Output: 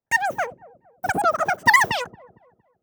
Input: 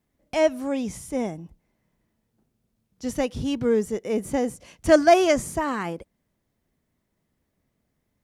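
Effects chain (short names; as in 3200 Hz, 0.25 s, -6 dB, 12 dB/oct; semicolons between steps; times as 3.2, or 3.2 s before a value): gate with hold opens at -42 dBFS; low shelf 350 Hz +6.5 dB; wide varispeed 2.92×; dark delay 0.23 s, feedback 36%, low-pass 490 Hz, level -13.5 dB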